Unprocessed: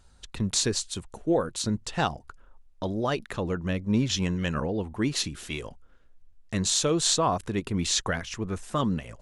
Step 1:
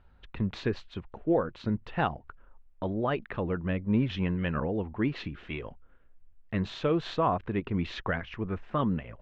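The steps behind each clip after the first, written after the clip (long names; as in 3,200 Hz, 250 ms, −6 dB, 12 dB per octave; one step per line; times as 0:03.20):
low-pass filter 2,700 Hz 24 dB per octave
level −1.5 dB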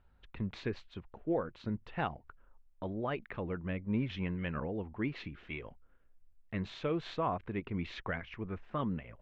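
dynamic equaliser 2,200 Hz, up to +6 dB, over −57 dBFS, Q 5.3
level −7 dB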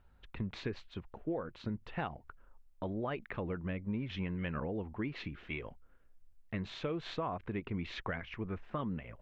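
downward compressor, threshold −35 dBFS, peak gain reduction 8 dB
level +2 dB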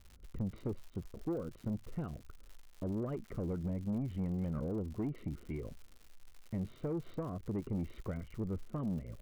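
moving average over 52 samples
surface crackle 160 per second −52 dBFS
soft clipping −35.5 dBFS, distortion −14 dB
level +5.5 dB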